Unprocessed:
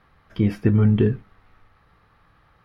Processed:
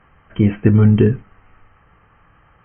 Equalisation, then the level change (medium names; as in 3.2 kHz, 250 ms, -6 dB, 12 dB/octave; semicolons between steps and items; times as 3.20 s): brick-wall FIR low-pass 3.2 kHz; +5.5 dB